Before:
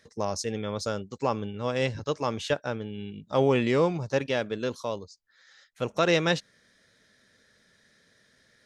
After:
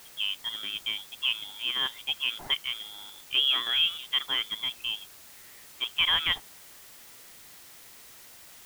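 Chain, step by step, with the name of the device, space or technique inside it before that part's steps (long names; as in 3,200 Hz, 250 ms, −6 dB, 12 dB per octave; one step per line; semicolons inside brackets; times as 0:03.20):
scrambled radio voice (band-pass filter 390–2,700 Hz; voice inversion scrambler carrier 3,700 Hz; white noise bed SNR 18 dB)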